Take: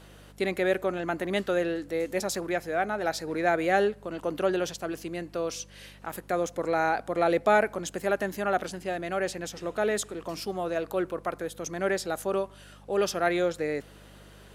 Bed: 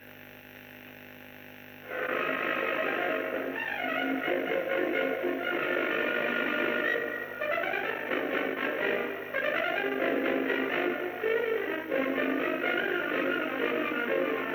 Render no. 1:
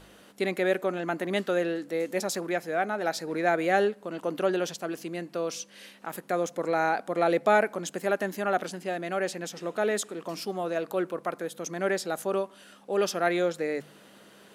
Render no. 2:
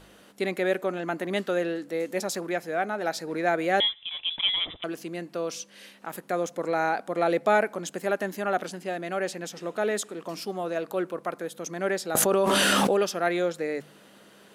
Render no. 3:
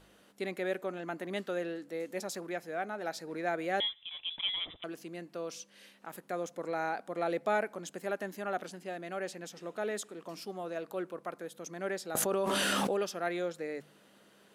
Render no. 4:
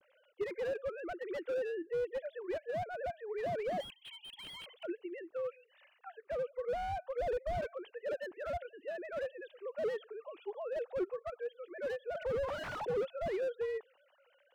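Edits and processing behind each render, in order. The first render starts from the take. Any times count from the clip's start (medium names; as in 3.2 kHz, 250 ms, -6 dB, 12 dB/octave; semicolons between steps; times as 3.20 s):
de-hum 50 Hz, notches 3
3.80–4.84 s: frequency inversion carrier 3.7 kHz; 12.15–13.03 s: level flattener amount 100%
trim -8.5 dB
formants replaced by sine waves; slew-rate limiter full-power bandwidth 13 Hz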